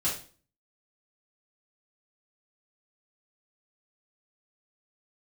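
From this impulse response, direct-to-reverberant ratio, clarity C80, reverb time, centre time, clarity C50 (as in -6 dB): -9.5 dB, 12.0 dB, 0.40 s, 30 ms, 6.5 dB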